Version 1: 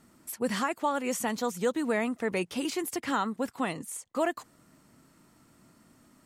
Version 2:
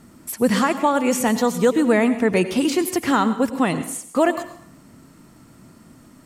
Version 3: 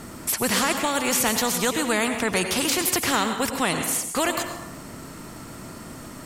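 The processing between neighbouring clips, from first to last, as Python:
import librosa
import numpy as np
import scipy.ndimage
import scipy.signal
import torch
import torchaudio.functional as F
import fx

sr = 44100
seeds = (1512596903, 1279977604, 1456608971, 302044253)

y1 = fx.low_shelf(x, sr, hz=390.0, db=6.0)
y1 = fx.rev_plate(y1, sr, seeds[0], rt60_s=0.61, hf_ratio=0.95, predelay_ms=80, drr_db=11.5)
y1 = F.gain(torch.from_numpy(y1), 8.5).numpy()
y2 = fx.spectral_comp(y1, sr, ratio=2.0)
y2 = F.gain(torch.from_numpy(y2), -2.5).numpy()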